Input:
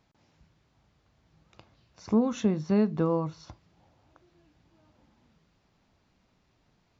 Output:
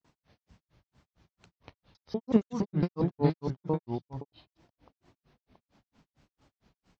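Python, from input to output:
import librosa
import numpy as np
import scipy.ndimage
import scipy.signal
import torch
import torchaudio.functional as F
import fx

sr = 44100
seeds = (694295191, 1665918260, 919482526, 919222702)

y = fx.block_reorder(x, sr, ms=97.0, group=2)
y = fx.echo_pitch(y, sr, ms=90, semitones=-2, count=2, db_per_echo=-3.0)
y = fx.granulator(y, sr, seeds[0], grain_ms=161.0, per_s=4.4, spray_ms=12.0, spread_st=3)
y = y * librosa.db_to_amplitude(2.0)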